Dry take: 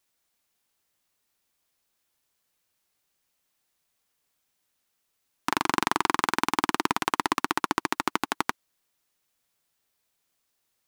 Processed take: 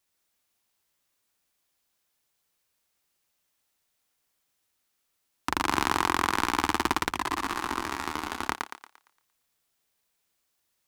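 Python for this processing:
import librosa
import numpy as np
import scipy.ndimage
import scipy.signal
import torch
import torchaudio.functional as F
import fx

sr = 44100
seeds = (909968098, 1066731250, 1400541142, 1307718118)

p1 = fx.octave_divider(x, sr, octaves=2, level_db=-5.0)
p2 = p1 + fx.echo_thinned(p1, sr, ms=115, feedback_pct=40, hz=280.0, wet_db=-3, dry=0)
p3 = fx.detune_double(p2, sr, cents=11, at=(7.13, 8.49))
y = p3 * 10.0 ** (-2.0 / 20.0)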